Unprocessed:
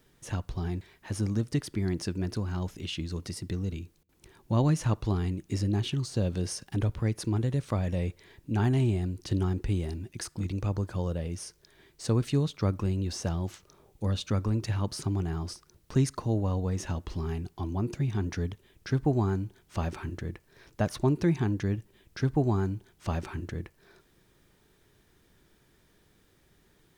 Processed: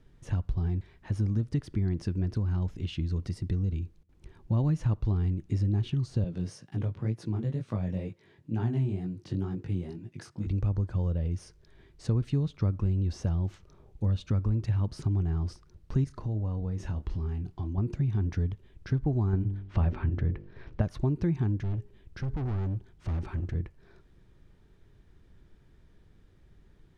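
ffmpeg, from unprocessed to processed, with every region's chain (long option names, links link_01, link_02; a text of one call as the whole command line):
ffmpeg -i in.wav -filter_complex "[0:a]asettb=1/sr,asplit=3[link_01][link_02][link_03];[link_01]atrim=end=6.244[link_04];[link_02]atrim=start=6.24:end=10.47,asetpts=PTS-STARTPTS,afade=type=in:duration=0.004:curve=qsin,afade=type=out:start_time=4.226:duration=0.004:curve=qsin,highpass=frequency=120:width=0.5412,highpass=frequency=120:width=1.3066,flanger=delay=17:depth=5.2:speed=2.1[link_05];[link_03]atrim=start=10.466[link_06];[link_04][link_05]acrossfade=duration=0.004:curve1=hsin:curve2=qsin[link_07];[link_07][link_06]acrossfade=duration=0.004:curve1=qsin:curve2=hsin,asettb=1/sr,asplit=3[link_08][link_09][link_10];[link_08]atrim=end=16.044[link_11];[link_09]atrim=start=16.04:end=17.78,asetpts=PTS-STARTPTS,afade=type=in:duration=0.004:curve=qsin,afade=type=out:start_time=1.736:duration=0.004:curve=qsin,acompressor=threshold=-38dB:ratio=2:attack=3.2:release=140:knee=1:detection=peak,asplit=2[link_12][link_13];[link_13]adelay=28,volume=-10dB[link_14];[link_12][link_14]amix=inputs=2:normalize=0,atrim=end_sample=76734[link_15];[link_10]atrim=start=17.776[link_16];[link_11][link_15]acrossfade=duration=0.004:curve1=hsin:curve2=qsin[link_17];[link_17][link_16]acrossfade=duration=0.004:curve1=qsin:curve2=hsin,asettb=1/sr,asplit=3[link_18][link_19][link_20];[link_18]atrim=end=19.334[link_21];[link_19]atrim=start=19.33:end=20.82,asetpts=PTS-STARTPTS,afade=type=in:duration=0.004:curve=qsin,afade=type=out:start_time=1.486:duration=0.004:curve=qsin,lowpass=3400,bandreject=frequency=49.1:width_type=h:width=4,bandreject=frequency=98.2:width_type=h:width=4,bandreject=frequency=147.3:width_type=h:width=4,bandreject=frequency=196.4:width_type=h:width=4,bandreject=frequency=245.5:width_type=h:width=4,bandreject=frequency=294.6:width_type=h:width=4,bandreject=frequency=343.7:width_type=h:width=4,bandreject=frequency=392.8:width_type=h:width=4,bandreject=frequency=441.9:width_type=h:width=4,bandreject=frequency=491:width_type=h:width=4,bandreject=frequency=540.1:width_type=h:width=4,bandreject=frequency=589.2:width_type=h:width=4,bandreject=frequency=638.3:width_type=h:width=4,bandreject=frequency=687.4:width_type=h:width=4,bandreject=frequency=736.5:width_type=h:width=4,acontrast=54[link_22];[link_20]atrim=start=20.816[link_23];[link_21][link_22]acrossfade=duration=0.004:curve1=hsin:curve2=qsin[link_24];[link_24][link_23]acrossfade=duration=0.004:curve1=qsin:curve2=hsin,asettb=1/sr,asplit=3[link_25][link_26][link_27];[link_25]atrim=end=21.574[link_28];[link_26]atrim=start=21.57:end=23.55,asetpts=PTS-STARTPTS,afade=type=in:duration=0.004:curve=qsin,afade=type=out:start_time=1.976:duration=0.004:curve=qsin,bandreject=frequency=412.7:width_type=h:width=4,bandreject=frequency=825.4:width_type=h:width=4,bandreject=frequency=1238.1:width_type=h:width=4,asoftclip=type=hard:threshold=-33dB[link_29];[link_27]atrim=start=23.546[link_30];[link_28][link_29]acrossfade=duration=0.004:curve1=hsin:curve2=qsin[link_31];[link_31][link_30]acrossfade=duration=0.004:curve1=qsin:curve2=hsin,aemphasis=mode=reproduction:type=bsi,acompressor=threshold=-24dB:ratio=2,volume=-3dB" out.wav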